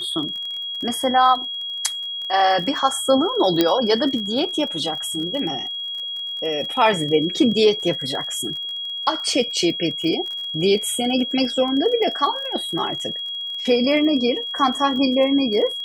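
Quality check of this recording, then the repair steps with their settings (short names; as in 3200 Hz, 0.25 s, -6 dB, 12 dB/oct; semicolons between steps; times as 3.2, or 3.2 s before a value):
crackle 31/s -29 dBFS
tone 3300 Hz -26 dBFS
3.61 pop -3 dBFS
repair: de-click; notch 3300 Hz, Q 30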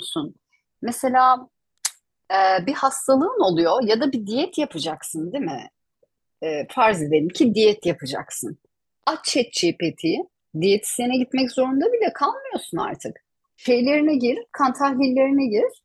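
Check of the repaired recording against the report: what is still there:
none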